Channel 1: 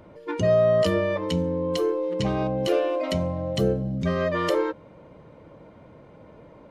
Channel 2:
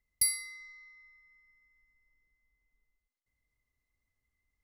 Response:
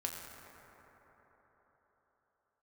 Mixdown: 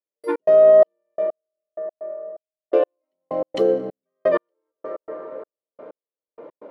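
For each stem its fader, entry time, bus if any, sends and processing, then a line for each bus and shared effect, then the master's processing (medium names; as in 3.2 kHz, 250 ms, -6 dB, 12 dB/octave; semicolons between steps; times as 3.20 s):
+3.0 dB, 0.00 s, muted 1.16–2.73 s, send -5.5 dB, peak limiter -16.5 dBFS, peak gain reduction 5 dB
-12.5 dB, 0.00 s, no send, none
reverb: on, RT60 4.6 s, pre-delay 6 ms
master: high-pass 380 Hz 24 dB/octave; tilt EQ -4.5 dB/octave; trance gate "..x.xxx...x.." 127 bpm -60 dB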